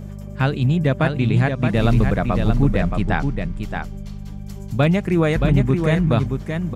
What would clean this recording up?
de-hum 50.4 Hz, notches 4; inverse comb 0.624 s -5.5 dB

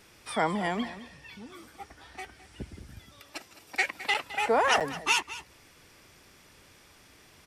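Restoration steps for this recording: interpolate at 4.14/4.8, 7.3 ms; inverse comb 0.212 s -15.5 dB

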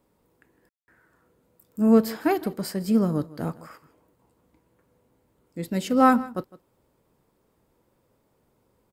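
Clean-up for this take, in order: room tone fill 0.69–0.88; inverse comb 0.158 s -19 dB

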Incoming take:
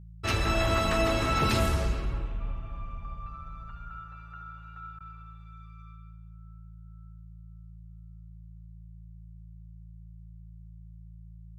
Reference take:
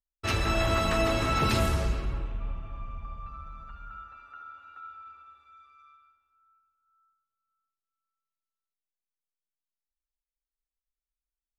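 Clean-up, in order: de-hum 55.2 Hz, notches 3; interpolate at 4.99, 13 ms

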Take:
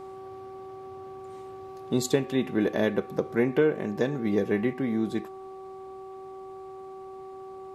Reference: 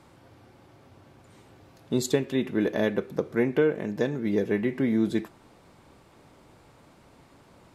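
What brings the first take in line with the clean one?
de-hum 382.1 Hz, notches 3; gain correction +3.5 dB, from 4.73

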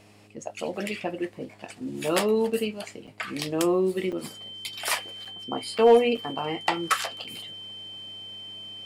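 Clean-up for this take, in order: clip repair -9.5 dBFS; de-hum 103.4 Hz, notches 4; notch 3100 Hz, Q 30; interpolate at 3.07/4.12/5.25/5.78/6.17/7.24, 6.2 ms

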